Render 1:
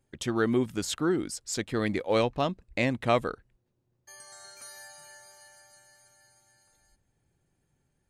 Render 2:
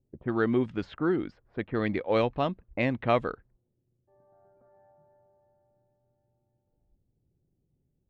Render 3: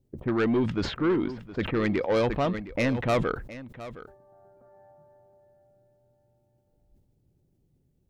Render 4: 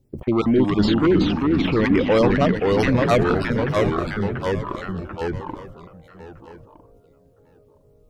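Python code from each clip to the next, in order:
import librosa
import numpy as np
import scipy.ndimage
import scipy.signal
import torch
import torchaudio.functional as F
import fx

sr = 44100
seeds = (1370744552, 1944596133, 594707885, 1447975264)

y1 = fx.env_lowpass(x, sr, base_hz=470.0, full_db=-25.0)
y1 = scipy.signal.sosfilt(scipy.signal.butter(2, 3100.0, 'lowpass', fs=sr, output='sos'), y1)
y1 = fx.env_lowpass(y1, sr, base_hz=730.0, full_db=-21.0)
y2 = 10.0 ** (-24.5 / 20.0) * np.tanh(y1 / 10.0 ** (-24.5 / 20.0))
y2 = y2 + 10.0 ** (-15.5 / 20.0) * np.pad(y2, (int(715 * sr / 1000.0), 0))[:len(y2)]
y2 = fx.sustainer(y2, sr, db_per_s=87.0)
y2 = F.gain(torch.from_numpy(y2), 5.5).numpy()
y3 = fx.spec_dropout(y2, sr, seeds[0], share_pct=28)
y3 = y3 + 10.0 ** (-17.5 / 20.0) * np.pad(y3, (int(892 * sr / 1000.0), 0))[:len(y3)]
y3 = fx.echo_pitch(y3, sr, ms=272, semitones=-2, count=3, db_per_echo=-3.0)
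y3 = F.gain(torch.from_numpy(y3), 7.0).numpy()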